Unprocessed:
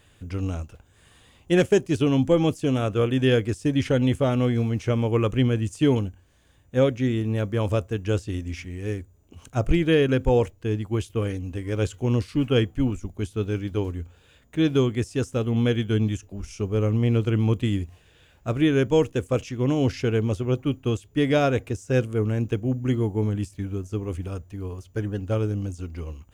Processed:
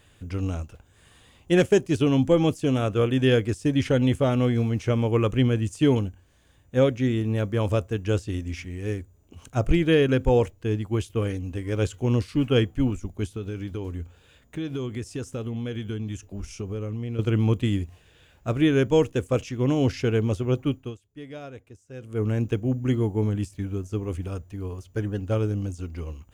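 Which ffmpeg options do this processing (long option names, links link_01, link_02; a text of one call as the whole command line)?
ffmpeg -i in.wav -filter_complex "[0:a]asettb=1/sr,asplit=3[link_01][link_02][link_03];[link_01]atrim=end=13.354[link_04];[link_02]atrim=start=13.35:end=17.19,asetpts=PTS-STARTPTS,afade=type=in:duration=0.004:curve=qsin,afade=type=out:start_time=3.836:duration=0.004:curve=qsin,acompressor=threshold=-27dB:ratio=6:attack=3.2:release=140:knee=1:detection=peak[link_05];[link_03]atrim=start=17.186[link_06];[link_04][link_05]acrossfade=duration=0.004:curve1=hsin:curve2=qsin[link_07];[link_07][link_06]acrossfade=duration=0.004:curve1=qsin:curve2=hsin,asplit=3[link_08][link_09][link_10];[link_08]atrim=end=20.95,asetpts=PTS-STARTPTS,afade=type=out:start_time=20.68:duration=0.27:silence=0.11885[link_11];[link_09]atrim=start=20.95:end=22,asetpts=PTS-STARTPTS,volume=-18.5dB[link_12];[link_10]atrim=start=22,asetpts=PTS-STARTPTS,afade=type=in:duration=0.27:silence=0.11885[link_13];[link_11][link_12][link_13]concat=n=3:v=0:a=1" out.wav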